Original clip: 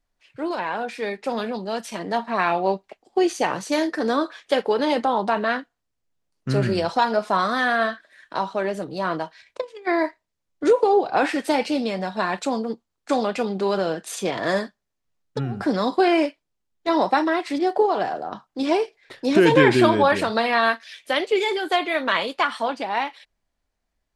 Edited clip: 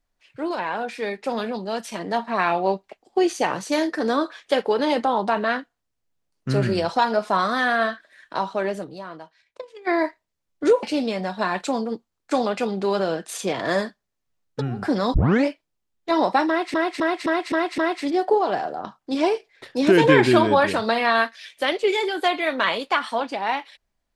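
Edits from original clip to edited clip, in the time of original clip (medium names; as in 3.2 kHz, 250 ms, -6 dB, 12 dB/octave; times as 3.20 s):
8.71–9.87 s: dip -12.5 dB, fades 0.34 s
10.83–11.61 s: delete
15.92 s: tape start 0.32 s
17.26–17.52 s: loop, 6 plays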